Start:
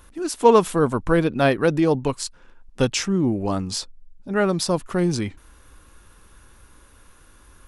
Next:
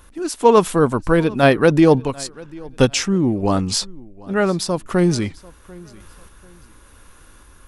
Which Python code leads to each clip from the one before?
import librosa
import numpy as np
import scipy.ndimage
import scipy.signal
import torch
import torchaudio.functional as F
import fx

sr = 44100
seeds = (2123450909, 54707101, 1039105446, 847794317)

y = fx.tremolo_random(x, sr, seeds[0], hz=3.5, depth_pct=55)
y = fx.echo_feedback(y, sr, ms=742, feedback_pct=31, wet_db=-23.0)
y = F.gain(torch.from_numpy(y), 7.0).numpy()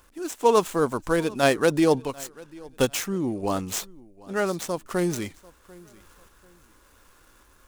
y = scipy.signal.medfilt(x, 9)
y = fx.bass_treble(y, sr, bass_db=-7, treble_db=12)
y = F.gain(torch.from_numpy(y), -6.0).numpy()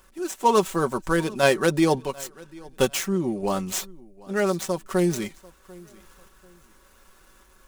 y = x + 0.57 * np.pad(x, (int(5.3 * sr / 1000.0), 0))[:len(x)]